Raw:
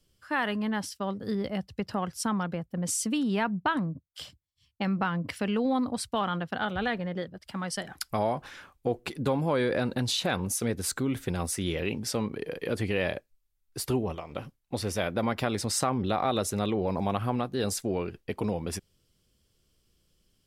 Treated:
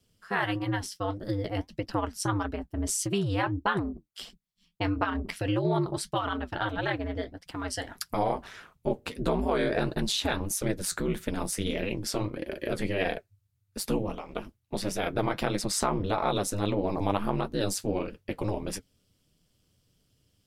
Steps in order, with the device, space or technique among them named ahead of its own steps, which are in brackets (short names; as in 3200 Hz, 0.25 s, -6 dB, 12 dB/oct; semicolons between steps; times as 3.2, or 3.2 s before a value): alien voice (ring modulator 100 Hz; flange 1.6 Hz, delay 4 ms, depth 7.9 ms, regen -53%); gain +7 dB